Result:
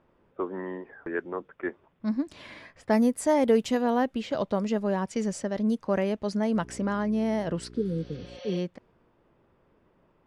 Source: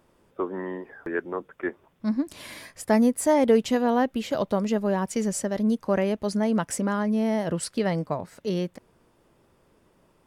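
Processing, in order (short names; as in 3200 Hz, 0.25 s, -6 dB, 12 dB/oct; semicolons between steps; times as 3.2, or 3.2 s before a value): low-pass opened by the level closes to 2500 Hz, open at -17 dBFS; 6.53–8.36 buzz 60 Hz, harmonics 7, -45 dBFS -2 dB/oct; 7.78–8.55 spectral repair 530–6500 Hz both; gain -2.5 dB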